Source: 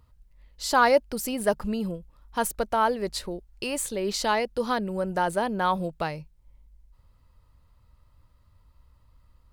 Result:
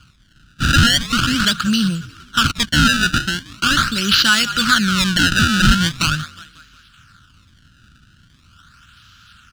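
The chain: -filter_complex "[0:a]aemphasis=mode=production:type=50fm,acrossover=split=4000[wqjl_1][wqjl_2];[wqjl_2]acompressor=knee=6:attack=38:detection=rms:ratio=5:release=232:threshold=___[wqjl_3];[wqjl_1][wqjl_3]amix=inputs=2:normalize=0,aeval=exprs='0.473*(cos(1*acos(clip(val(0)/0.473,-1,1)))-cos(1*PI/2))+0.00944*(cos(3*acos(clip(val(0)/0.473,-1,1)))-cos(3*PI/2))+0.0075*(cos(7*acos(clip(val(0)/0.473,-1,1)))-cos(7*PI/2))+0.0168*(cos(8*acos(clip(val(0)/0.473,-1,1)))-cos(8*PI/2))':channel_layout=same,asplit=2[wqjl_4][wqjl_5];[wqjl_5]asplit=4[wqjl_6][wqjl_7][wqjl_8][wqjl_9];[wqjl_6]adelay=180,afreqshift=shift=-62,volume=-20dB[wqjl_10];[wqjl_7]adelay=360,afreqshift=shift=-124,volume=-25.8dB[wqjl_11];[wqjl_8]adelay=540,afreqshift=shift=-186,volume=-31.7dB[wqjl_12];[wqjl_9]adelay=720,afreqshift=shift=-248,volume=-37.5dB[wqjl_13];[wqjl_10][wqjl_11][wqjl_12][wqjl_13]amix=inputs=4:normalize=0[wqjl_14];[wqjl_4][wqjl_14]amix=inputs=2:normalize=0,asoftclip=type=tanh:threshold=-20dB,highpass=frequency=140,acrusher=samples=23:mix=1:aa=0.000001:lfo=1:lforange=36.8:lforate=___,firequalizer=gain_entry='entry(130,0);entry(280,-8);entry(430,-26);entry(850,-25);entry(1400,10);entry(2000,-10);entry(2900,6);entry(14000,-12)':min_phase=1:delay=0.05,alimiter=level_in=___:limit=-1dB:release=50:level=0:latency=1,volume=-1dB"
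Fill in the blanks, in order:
-34dB, 0.41, 20.5dB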